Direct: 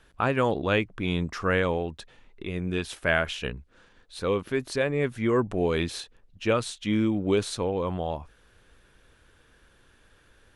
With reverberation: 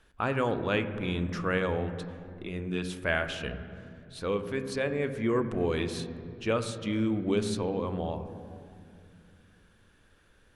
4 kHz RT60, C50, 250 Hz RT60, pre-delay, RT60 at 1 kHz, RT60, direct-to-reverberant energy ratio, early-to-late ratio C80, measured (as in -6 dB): 1.6 s, 10.5 dB, 3.3 s, 3 ms, 2.2 s, 2.4 s, 9.0 dB, 11.5 dB